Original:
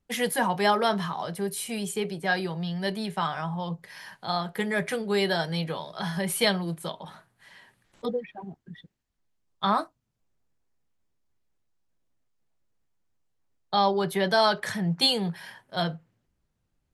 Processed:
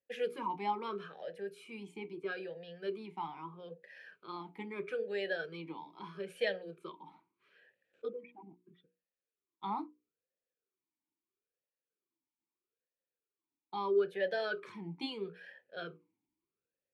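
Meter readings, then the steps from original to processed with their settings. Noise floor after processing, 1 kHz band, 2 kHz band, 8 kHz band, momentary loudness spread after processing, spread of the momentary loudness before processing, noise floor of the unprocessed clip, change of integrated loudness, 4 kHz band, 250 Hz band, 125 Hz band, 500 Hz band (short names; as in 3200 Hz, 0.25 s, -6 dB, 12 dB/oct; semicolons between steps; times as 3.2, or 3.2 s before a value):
under -85 dBFS, -13.0 dB, -12.0 dB, under -30 dB, 16 LU, 16 LU, -77 dBFS, -12.0 dB, -19.0 dB, -15.0 dB, -20.5 dB, -8.5 dB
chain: notches 60/120/180/240/300/360/420/480 Hz; vowel sweep e-u 0.77 Hz; gain +1 dB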